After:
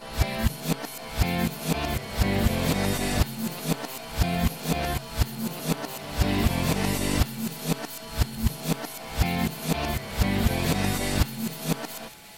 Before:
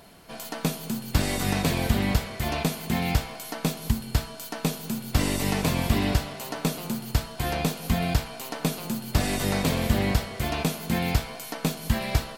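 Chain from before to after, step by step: reverse the whole clip; de-hum 136.8 Hz, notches 36; whistle 850 Hz -55 dBFS; on a send: feedback echo behind a high-pass 410 ms, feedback 79%, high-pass 1.6 kHz, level -16.5 dB

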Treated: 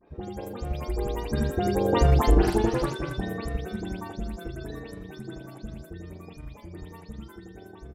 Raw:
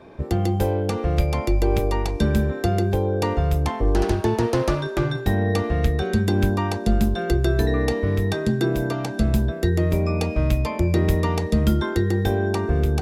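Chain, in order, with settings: delay that grows with frequency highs late, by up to 187 ms; Doppler pass-by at 3.52 s, 8 m/s, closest 4.2 m; delay 433 ms -14 dB; granular stretch 0.61×, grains 79 ms; trim +4 dB

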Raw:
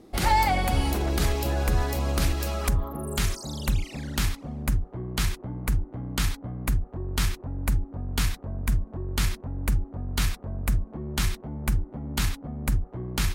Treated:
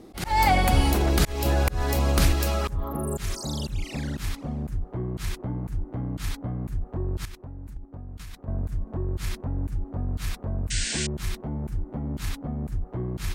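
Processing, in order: slow attack 223 ms; 7.25–8.48 s: level held to a coarse grid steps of 14 dB; 10.70–11.07 s: painted sound noise 1.4–9.1 kHz -34 dBFS; trim +4 dB

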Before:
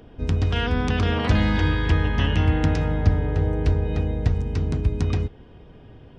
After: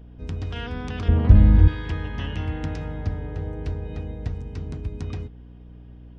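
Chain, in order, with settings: 1.08–1.68 s: tilt EQ -4.5 dB/octave; hum 60 Hz, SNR 22 dB; trim -8.5 dB

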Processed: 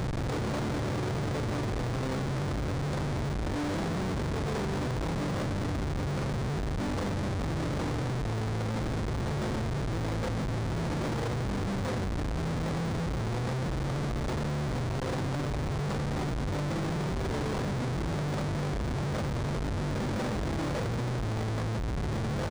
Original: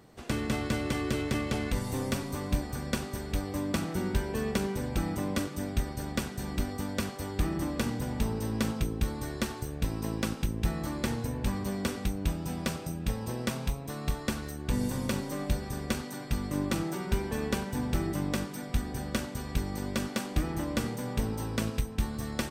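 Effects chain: phaser 0.95 Hz, delay 3.5 ms, feedback 32%; doubling 35 ms -10.5 dB; on a send at -4 dB: reverberation RT60 0.70 s, pre-delay 6 ms; on the sum: upward compressor, threshold -27 dBFS; graphic EQ 125/500/1000/2000 Hz +11/+7/+8/-11 dB; Schmitt trigger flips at -30 dBFS; peaking EQ 2.8 kHz -4 dB 0.35 oct; decimation joined by straight lines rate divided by 3×; trim -8 dB

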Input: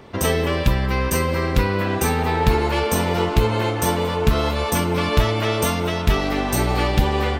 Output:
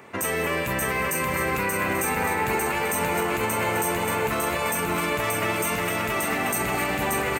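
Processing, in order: high-pass 130 Hz 12 dB/octave; tilt shelf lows -6 dB, about 1.1 kHz; feedback delay 580 ms, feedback 48%, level -5.5 dB; peak limiter -15 dBFS, peak gain reduction 10.5 dB; high-order bell 4.2 kHz -12 dB 1.1 oct; on a send at -12 dB: reverberation RT60 1.4 s, pre-delay 110 ms

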